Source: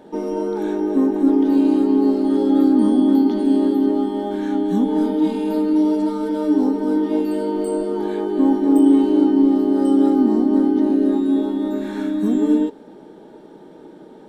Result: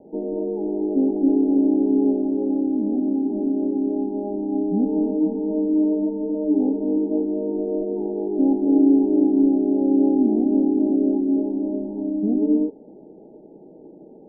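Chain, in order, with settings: steep low-pass 790 Hz 72 dB/octave; 2.19–4.30 s: compression, threshold -16 dBFS, peak gain reduction 6 dB; trim -2.5 dB

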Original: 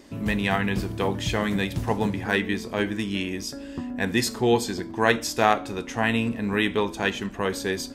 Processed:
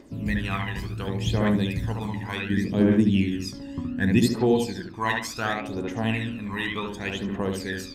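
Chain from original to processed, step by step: 2.50–4.19 s: peaking EQ 150 Hz +9.5 dB 2.8 oct; bucket-brigade echo 72 ms, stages 2048, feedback 34%, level -3 dB; phaser 0.68 Hz, delay 1.1 ms, feedback 67%; trim -8 dB

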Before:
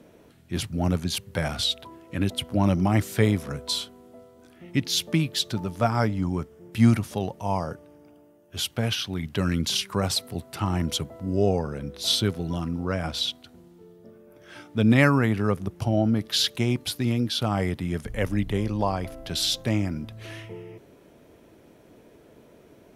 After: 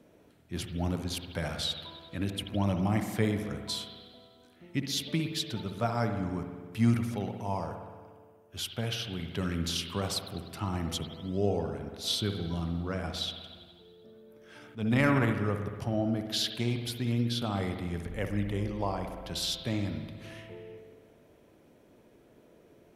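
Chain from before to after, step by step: spring tank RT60 1.6 s, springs 59 ms, chirp 45 ms, DRR 5.5 dB; 14.58–15.32 s: transient shaper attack -9 dB, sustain +9 dB; trim -7.5 dB

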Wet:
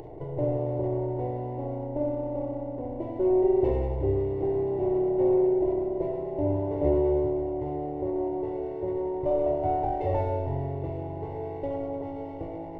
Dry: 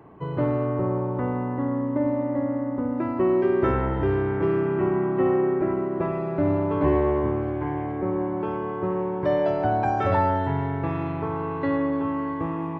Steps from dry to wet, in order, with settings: comb filter that takes the minimum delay 0.33 ms; upward compressor, threshold -28 dBFS; Savitzky-Golay filter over 65 samples; static phaser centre 520 Hz, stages 4; de-hum 54.62 Hz, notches 12; on a send: reverberation RT60 0.35 s, pre-delay 5 ms, DRR 7 dB

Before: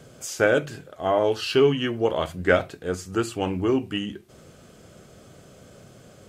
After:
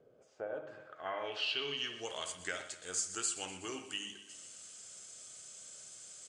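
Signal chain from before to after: pre-emphasis filter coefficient 0.97; compression 5:1, threshold -39 dBFS, peak gain reduction 8.5 dB; low-pass sweep 450 Hz -> 7.7 kHz, 0.16–2.11 s; feedback delay 123 ms, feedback 57%, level -14 dB; on a send at -9 dB: reverberation, pre-delay 56 ms; on the sum: resampled via 22.05 kHz; tape noise reduction on one side only encoder only; trim +2.5 dB

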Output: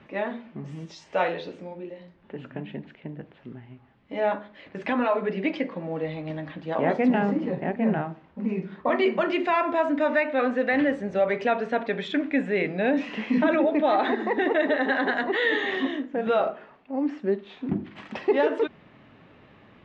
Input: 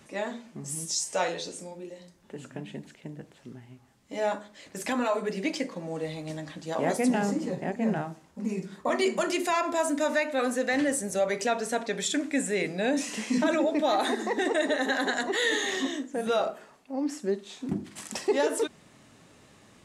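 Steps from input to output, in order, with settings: low-pass 3 kHz 24 dB/octave; trim +3.5 dB

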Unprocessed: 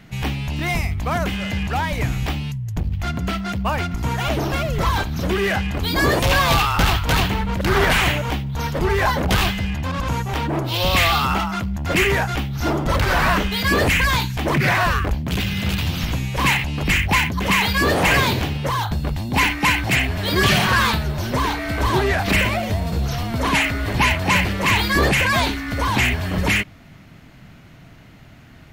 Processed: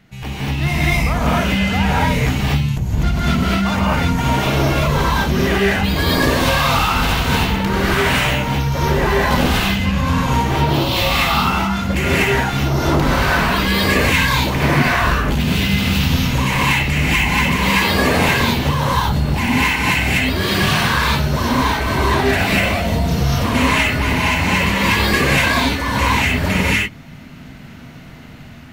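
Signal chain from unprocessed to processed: level rider gain up to 6.5 dB; peak limiter -8.5 dBFS, peak gain reduction 6.5 dB; gated-style reverb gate 270 ms rising, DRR -7 dB; trim -6.5 dB

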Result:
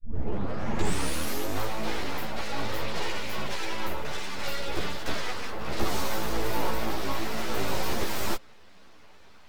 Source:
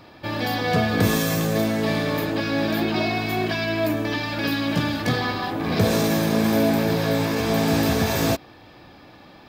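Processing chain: tape start-up on the opening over 1.62 s; full-wave rectifier; three-phase chorus; trim -2.5 dB

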